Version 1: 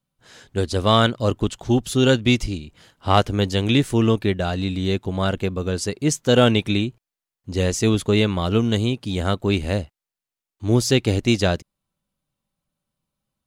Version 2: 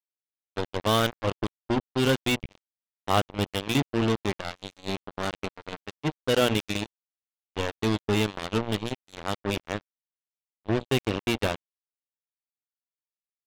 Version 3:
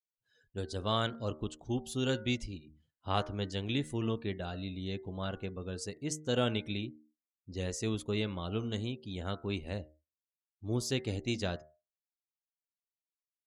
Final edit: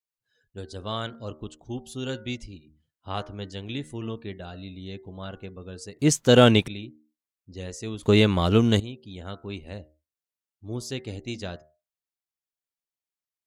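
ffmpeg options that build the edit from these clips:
-filter_complex "[0:a]asplit=2[s0][s1];[2:a]asplit=3[s2][s3][s4];[s2]atrim=end=5.992[s5];[s0]atrim=start=5.988:end=6.682[s6];[s3]atrim=start=6.678:end=8.032[s7];[s1]atrim=start=8.028:end=8.802[s8];[s4]atrim=start=8.798[s9];[s5][s6]acrossfade=d=0.004:c1=hsin:c2=hsin[s10];[s10][s7]acrossfade=d=0.004:c1=hsin:c2=hsin[s11];[s11][s8]acrossfade=d=0.004:c1=hsin:c2=hsin[s12];[s12][s9]acrossfade=d=0.004:c1=hsin:c2=hsin"

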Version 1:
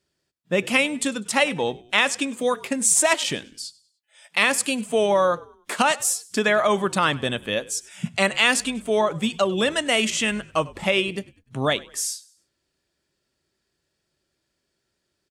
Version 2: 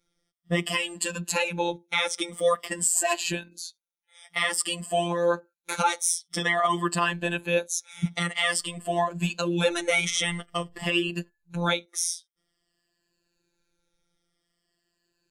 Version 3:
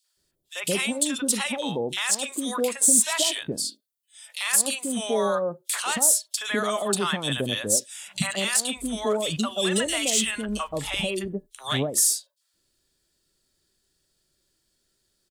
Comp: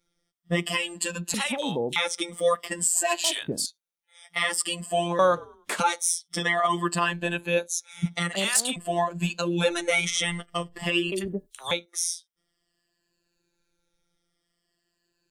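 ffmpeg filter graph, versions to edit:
-filter_complex "[2:a]asplit=4[s0][s1][s2][s3];[1:a]asplit=6[s4][s5][s6][s7][s8][s9];[s4]atrim=end=1.342[s10];[s0]atrim=start=1.338:end=1.962[s11];[s5]atrim=start=1.958:end=3.242[s12];[s1]atrim=start=3.238:end=3.662[s13];[s6]atrim=start=3.658:end=5.192[s14];[0:a]atrim=start=5.188:end=5.802[s15];[s7]atrim=start=5.798:end=8.332[s16];[s2]atrim=start=8.328:end=8.762[s17];[s8]atrim=start=8.758:end=11.122[s18];[s3]atrim=start=11.118:end=11.712[s19];[s9]atrim=start=11.708[s20];[s10][s11]acrossfade=d=0.004:c1=hsin:c2=hsin[s21];[s21][s12]acrossfade=d=0.004:c1=hsin:c2=hsin[s22];[s22][s13]acrossfade=d=0.004:c1=hsin:c2=hsin[s23];[s23][s14]acrossfade=d=0.004:c1=hsin:c2=hsin[s24];[s24][s15]acrossfade=d=0.004:c1=hsin:c2=hsin[s25];[s25][s16]acrossfade=d=0.004:c1=hsin:c2=hsin[s26];[s26][s17]acrossfade=d=0.004:c1=hsin:c2=hsin[s27];[s27][s18]acrossfade=d=0.004:c1=hsin:c2=hsin[s28];[s28][s19]acrossfade=d=0.004:c1=hsin:c2=hsin[s29];[s29][s20]acrossfade=d=0.004:c1=hsin:c2=hsin"

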